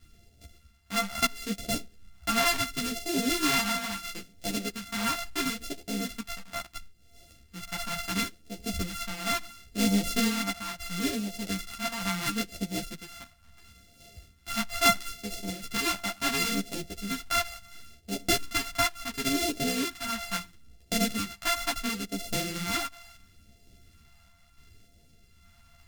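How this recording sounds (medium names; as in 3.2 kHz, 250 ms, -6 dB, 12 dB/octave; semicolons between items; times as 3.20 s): a buzz of ramps at a fixed pitch in blocks of 64 samples; phasing stages 2, 0.73 Hz, lowest notch 390–1100 Hz; random-step tremolo; a shimmering, thickened sound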